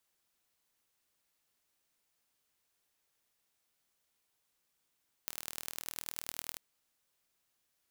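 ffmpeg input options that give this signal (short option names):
-f lavfi -i "aevalsrc='0.335*eq(mod(n,1114),0)*(0.5+0.5*eq(mod(n,4456),0))':d=1.3:s=44100"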